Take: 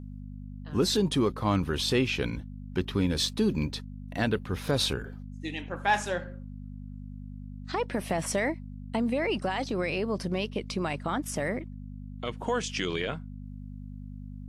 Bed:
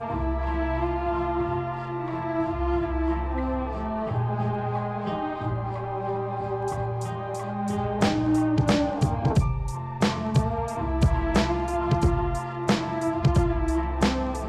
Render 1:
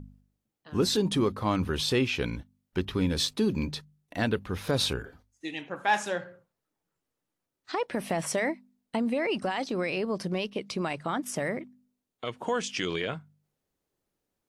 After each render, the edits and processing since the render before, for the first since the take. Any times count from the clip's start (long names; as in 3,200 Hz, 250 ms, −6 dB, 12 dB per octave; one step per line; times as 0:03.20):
hum removal 50 Hz, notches 5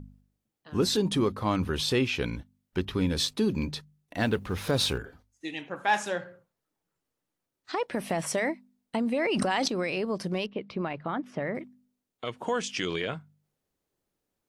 0:04.20–0:04.98: mu-law and A-law mismatch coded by mu
0:09.14–0:09.68: envelope flattener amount 100%
0:10.46–0:11.55: high-frequency loss of the air 330 metres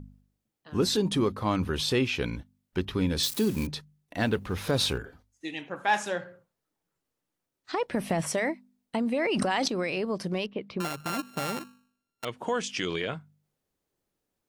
0:03.23–0:03.67: spike at every zero crossing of −27.5 dBFS
0:07.72–0:08.31: low-shelf EQ 160 Hz +9.5 dB
0:10.80–0:12.25: samples sorted by size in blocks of 32 samples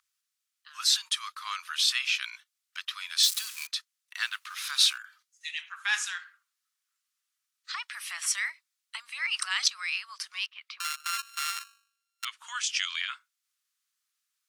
elliptic high-pass filter 1,200 Hz, stop band 60 dB
parametric band 6,500 Hz +7.5 dB 2.5 octaves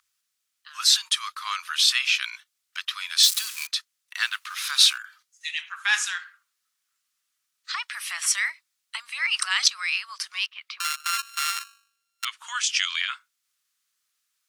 level +5.5 dB